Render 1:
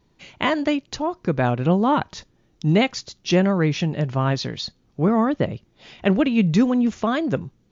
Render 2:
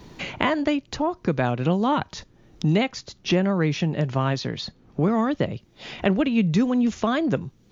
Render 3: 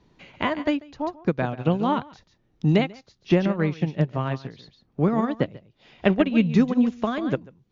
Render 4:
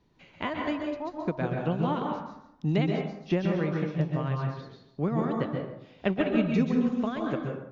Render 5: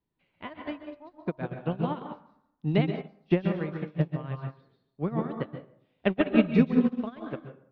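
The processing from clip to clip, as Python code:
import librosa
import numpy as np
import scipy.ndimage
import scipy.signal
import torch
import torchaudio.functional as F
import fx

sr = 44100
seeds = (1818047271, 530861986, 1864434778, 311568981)

y1 = fx.band_squash(x, sr, depth_pct=70)
y1 = F.gain(torch.from_numpy(y1), -2.5).numpy()
y2 = fx.air_absorb(y1, sr, metres=80.0)
y2 = y2 + 10.0 ** (-9.5 / 20.0) * np.pad(y2, (int(141 * sr / 1000.0), 0))[:len(y2)]
y2 = fx.upward_expand(y2, sr, threshold_db=-29.0, expansion=2.5)
y2 = F.gain(torch.from_numpy(y2), 4.0).numpy()
y3 = fx.rev_plate(y2, sr, seeds[0], rt60_s=0.83, hf_ratio=0.5, predelay_ms=115, drr_db=1.0)
y3 = F.gain(torch.from_numpy(y3), -7.5).numpy()
y4 = scipy.signal.sosfilt(scipy.signal.butter(4, 4200.0, 'lowpass', fs=sr, output='sos'), y3)
y4 = fx.upward_expand(y4, sr, threshold_db=-36.0, expansion=2.5)
y4 = F.gain(torch.from_numpy(y4), 6.0).numpy()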